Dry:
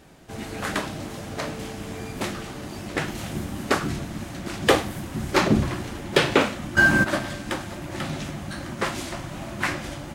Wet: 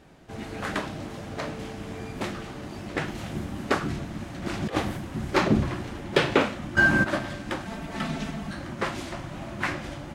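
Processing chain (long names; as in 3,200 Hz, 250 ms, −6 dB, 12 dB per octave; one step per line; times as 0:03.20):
low-pass filter 3,900 Hz 6 dB per octave
0:04.42–0:04.97: compressor whose output falls as the input rises −23 dBFS, ratio −0.5
0:07.65–0:08.51: comb filter 4.5 ms, depth 91%
level −2 dB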